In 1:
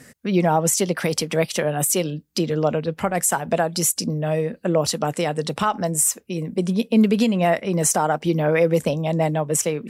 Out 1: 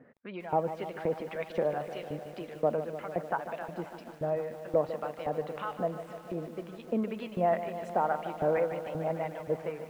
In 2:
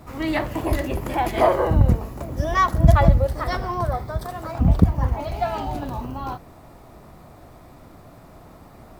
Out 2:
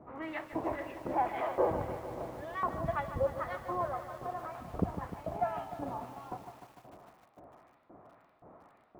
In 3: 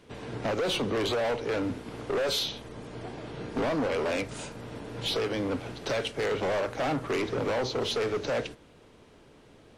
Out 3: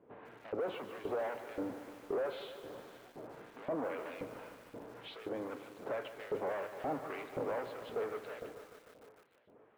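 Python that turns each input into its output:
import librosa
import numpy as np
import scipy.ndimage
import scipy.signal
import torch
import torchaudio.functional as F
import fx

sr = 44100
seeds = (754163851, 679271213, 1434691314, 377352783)

p1 = fx.high_shelf(x, sr, hz=2700.0, db=-8.5)
p2 = 10.0 ** (-18.0 / 20.0) * np.tanh(p1 / 10.0 ** (-18.0 / 20.0))
p3 = p1 + (p2 * 10.0 ** (-10.5 / 20.0))
p4 = fx.filter_lfo_bandpass(p3, sr, shape='saw_up', hz=1.9, low_hz=470.0, high_hz=6700.0, q=0.75)
p5 = fx.air_absorb(p4, sr, metres=450.0)
p6 = fx.echo_feedback(p5, sr, ms=530, feedback_pct=55, wet_db=-20.0)
p7 = fx.echo_crushed(p6, sr, ms=150, feedback_pct=80, bits=8, wet_db=-11.5)
y = p7 * 10.0 ** (-5.5 / 20.0)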